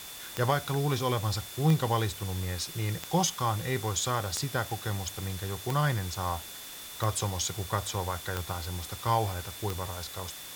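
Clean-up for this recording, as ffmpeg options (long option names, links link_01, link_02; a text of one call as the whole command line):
ffmpeg -i in.wav -af "adeclick=threshold=4,bandreject=frequency=3500:width=30,afftdn=noise_reduction=30:noise_floor=-43" out.wav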